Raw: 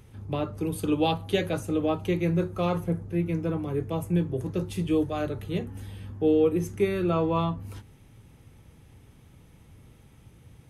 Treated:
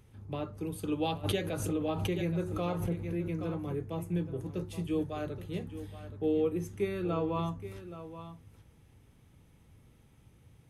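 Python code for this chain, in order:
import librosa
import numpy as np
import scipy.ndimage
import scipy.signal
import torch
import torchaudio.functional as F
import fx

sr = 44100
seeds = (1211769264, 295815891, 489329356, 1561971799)

y = x + 10.0 ** (-12.5 / 20.0) * np.pad(x, (int(824 * sr / 1000.0), 0))[:len(x)]
y = fx.pre_swell(y, sr, db_per_s=38.0, at=(1.23, 3.74), fade=0.02)
y = F.gain(torch.from_numpy(y), -7.5).numpy()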